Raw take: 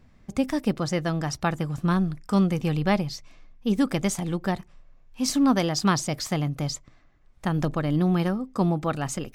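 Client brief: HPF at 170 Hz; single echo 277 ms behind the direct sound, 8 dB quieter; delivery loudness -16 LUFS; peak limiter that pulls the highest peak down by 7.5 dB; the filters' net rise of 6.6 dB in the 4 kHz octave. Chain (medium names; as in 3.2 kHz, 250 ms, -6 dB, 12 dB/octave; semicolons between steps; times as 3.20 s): high-pass 170 Hz; peaking EQ 4 kHz +9 dB; peak limiter -15 dBFS; delay 277 ms -8 dB; trim +11 dB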